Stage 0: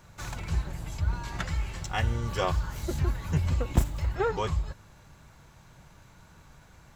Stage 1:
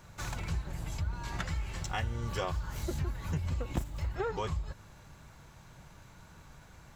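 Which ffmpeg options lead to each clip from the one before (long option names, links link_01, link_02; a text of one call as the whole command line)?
ffmpeg -i in.wav -af "acompressor=threshold=-32dB:ratio=3" out.wav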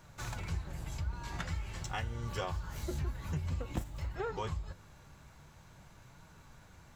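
ffmpeg -i in.wav -af "flanger=delay=6.1:depth=9.7:regen=72:speed=0.48:shape=triangular,volume=1.5dB" out.wav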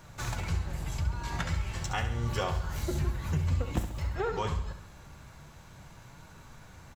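ffmpeg -i in.wav -af "aecho=1:1:68|136|204|272|340:0.335|0.161|0.0772|0.037|0.0178,volume=5.5dB" out.wav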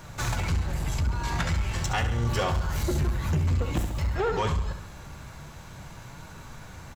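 ffmpeg -i in.wav -af "asoftclip=type=tanh:threshold=-27dB,volume=7.5dB" out.wav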